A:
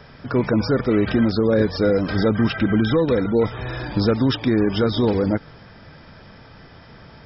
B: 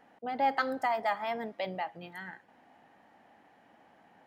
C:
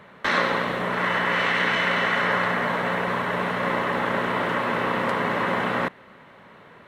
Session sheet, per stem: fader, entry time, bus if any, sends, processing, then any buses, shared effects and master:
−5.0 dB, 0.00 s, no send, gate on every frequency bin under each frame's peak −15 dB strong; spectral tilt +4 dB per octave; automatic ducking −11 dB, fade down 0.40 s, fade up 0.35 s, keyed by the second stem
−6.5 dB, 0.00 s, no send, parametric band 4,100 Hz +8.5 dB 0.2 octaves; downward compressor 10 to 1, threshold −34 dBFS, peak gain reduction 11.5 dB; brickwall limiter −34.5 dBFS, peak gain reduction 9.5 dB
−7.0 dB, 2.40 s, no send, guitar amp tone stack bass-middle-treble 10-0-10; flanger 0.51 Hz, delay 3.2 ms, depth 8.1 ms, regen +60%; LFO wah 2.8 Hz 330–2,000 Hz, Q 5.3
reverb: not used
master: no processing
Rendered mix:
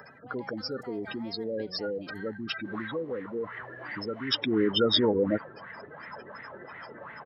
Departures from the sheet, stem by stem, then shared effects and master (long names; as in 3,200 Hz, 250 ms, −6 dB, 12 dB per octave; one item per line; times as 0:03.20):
stem A −5.0 dB → +1.0 dB
stem C: missing guitar amp tone stack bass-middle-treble 10-0-10
master: extra high-pass filter 92 Hz